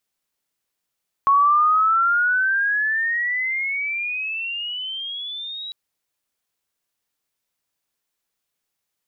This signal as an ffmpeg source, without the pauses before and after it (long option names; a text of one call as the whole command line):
ffmpeg -f lavfi -i "aevalsrc='pow(10,(-12-17.5*t/4.45)/20)*sin(2*PI*1100*4.45/log(3900/1100)*(exp(log(3900/1100)*t/4.45)-1))':duration=4.45:sample_rate=44100" out.wav